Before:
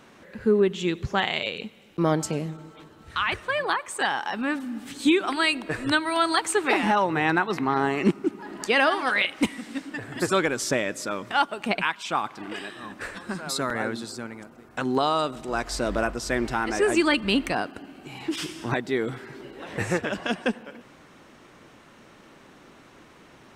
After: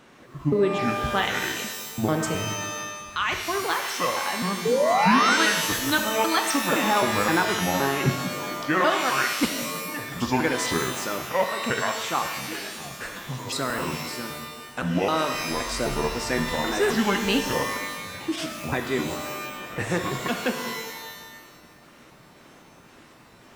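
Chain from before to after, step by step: pitch shift switched off and on -7 st, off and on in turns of 260 ms; painted sound rise, 4.65–5.37 s, 430–1600 Hz -21 dBFS; pitch-shifted reverb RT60 1.2 s, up +12 st, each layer -2 dB, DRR 5.5 dB; trim -1 dB

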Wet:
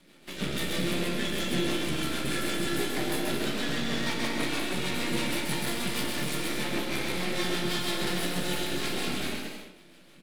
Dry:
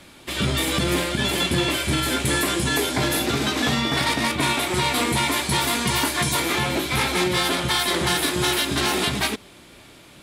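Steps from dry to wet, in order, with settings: fifteen-band graphic EQ 100 Hz -4 dB, 1 kHz -6 dB, 6.3 kHz -6 dB; half-wave rectifier; resonant low shelf 130 Hz -6 dB, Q 3; rotary cabinet horn 6.3 Hz; bouncing-ball echo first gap 130 ms, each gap 0.7×, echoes 5; on a send at -1.5 dB: reverberation RT60 0.55 s, pre-delay 14 ms; on the sum: trim -5 dB

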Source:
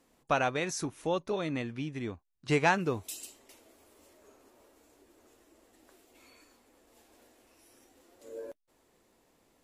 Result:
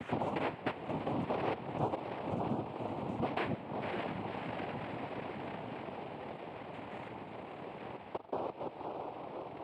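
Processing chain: slices played last to first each 177 ms, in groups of 5; in parallel at +2.5 dB: peak limiter -24 dBFS, peak gain reduction 12 dB; on the sum: low-pass 1.2 kHz 24 dB/octave; bass shelf 160 Hz -6 dB; on a send: echo that smears into a reverb 579 ms, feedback 49%, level -12.5 dB; on the sum: compression 2.5:1, threshold -49 dBFS, peak gain reduction 18.5 dB; spring tank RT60 1.1 s, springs 45 ms, DRR 11 dB; noise-vocoded speech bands 4; three bands compressed up and down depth 40%; trim +8.5 dB

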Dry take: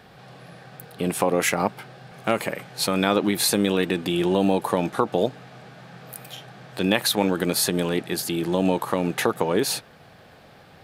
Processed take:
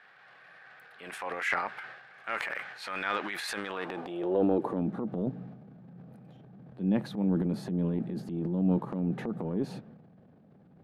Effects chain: band-pass sweep 1.7 kHz -> 200 Hz, 3.51–4.91 s; transient shaper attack -6 dB, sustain +9 dB

